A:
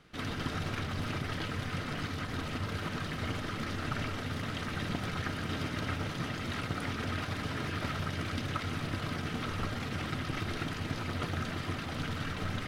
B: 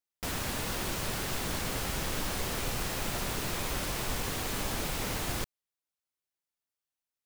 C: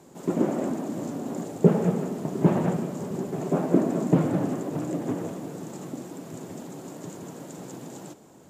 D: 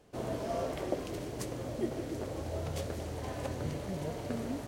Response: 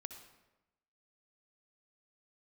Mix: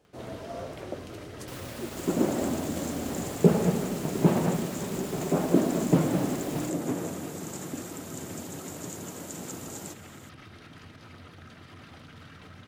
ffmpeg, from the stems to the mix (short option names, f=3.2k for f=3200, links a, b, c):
-filter_complex "[0:a]alimiter=level_in=6dB:limit=-24dB:level=0:latency=1:release=86,volume=-6dB,acompressor=mode=upward:threshold=-52dB:ratio=2.5,adelay=50,volume=-8.5dB[a];[1:a]alimiter=level_in=4dB:limit=-24dB:level=0:latency=1,volume=-4dB,adelay=1250,volume=-5.5dB[b];[2:a]highshelf=f=4k:g=11.5,adelay=1800,volume=-1.5dB[c];[3:a]volume=-3.5dB[d];[a][b][c][d]amix=inputs=4:normalize=0,highpass=53"